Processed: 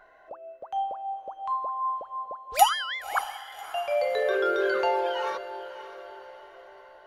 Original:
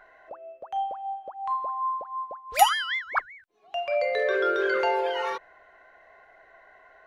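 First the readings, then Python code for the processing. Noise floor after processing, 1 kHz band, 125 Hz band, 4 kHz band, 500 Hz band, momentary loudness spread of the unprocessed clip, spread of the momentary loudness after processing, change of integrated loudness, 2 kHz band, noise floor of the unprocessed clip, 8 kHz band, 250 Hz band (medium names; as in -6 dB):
-54 dBFS, -0.5 dB, no reading, -1.0 dB, 0.0 dB, 15 LU, 21 LU, -1.0 dB, -3.5 dB, -56 dBFS, 0.0 dB, 0.0 dB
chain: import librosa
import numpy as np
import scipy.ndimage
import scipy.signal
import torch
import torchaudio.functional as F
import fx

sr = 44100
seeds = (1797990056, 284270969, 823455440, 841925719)

p1 = fx.peak_eq(x, sr, hz=2000.0, db=-6.0, octaves=0.62)
y = p1 + fx.echo_diffused(p1, sr, ms=573, feedback_pct=47, wet_db=-13, dry=0)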